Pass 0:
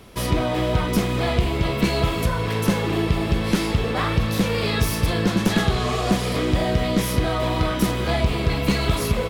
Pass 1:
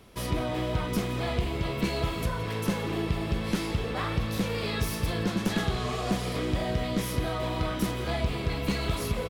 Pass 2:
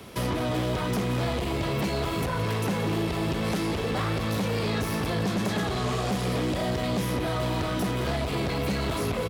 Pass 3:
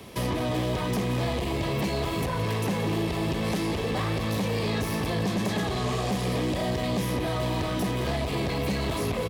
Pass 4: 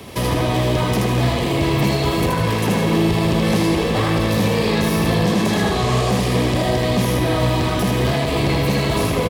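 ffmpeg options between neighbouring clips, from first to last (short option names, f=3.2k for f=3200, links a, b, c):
-af "aecho=1:1:170:0.158,volume=-8dB"
-filter_complex "[0:a]acrossover=split=240|1900|4500[a][b][c][d];[a]acompressor=threshold=-32dB:ratio=4[e];[b]acompressor=threshold=-37dB:ratio=4[f];[c]acompressor=threshold=-51dB:ratio=4[g];[d]acompressor=threshold=-51dB:ratio=4[h];[e][f][g][h]amix=inputs=4:normalize=0,aeval=exprs='0.0944*sin(PI/2*2.51*val(0)/0.0944)':c=same,highpass=81,volume=-1.5dB"
-af "bandreject=f=1.4k:w=5.9"
-af "aecho=1:1:78.72|151.6:0.708|0.282,volume=7.5dB"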